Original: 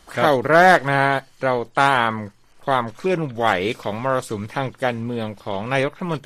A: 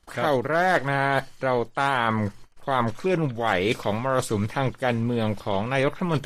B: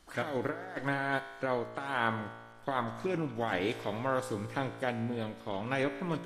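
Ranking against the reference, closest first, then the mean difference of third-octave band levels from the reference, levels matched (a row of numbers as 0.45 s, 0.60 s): A, B; 3.5 dB, 6.0 dB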